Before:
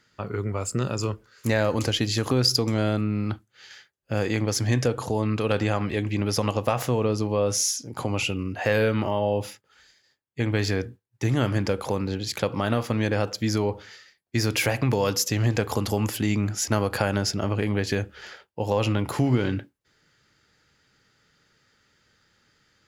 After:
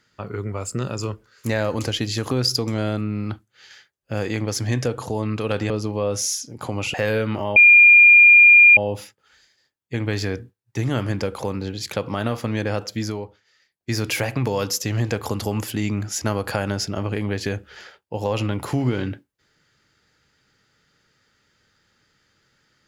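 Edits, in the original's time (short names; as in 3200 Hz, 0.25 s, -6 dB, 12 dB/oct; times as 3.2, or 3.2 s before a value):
5.7–7.06 cut
8.3–8.61 cut
9.23 add tone 2410 Hz -6.5 dBFS 1.21 s
13.4–14.39 dip -21.5 dB, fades 0.48 s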